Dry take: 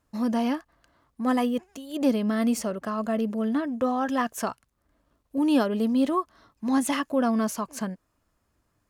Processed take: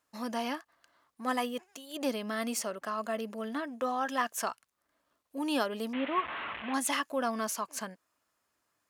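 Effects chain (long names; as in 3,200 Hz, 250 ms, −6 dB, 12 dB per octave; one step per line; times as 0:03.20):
0:05.93–0:06.74: linear delta modulator 16 kbit/s, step −28.5 dBFS
high-pass filter 1,000 Hz 6 dB per octave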